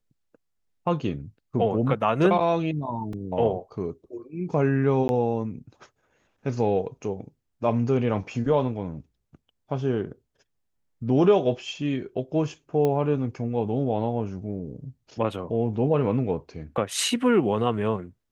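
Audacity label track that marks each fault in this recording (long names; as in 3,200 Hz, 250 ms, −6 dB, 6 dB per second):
3.130000	3.130000	drop-out 2.8 ms
5.080000	5.090000	drop-out 11 ms
12.850000	12.850000	click −14 dBFS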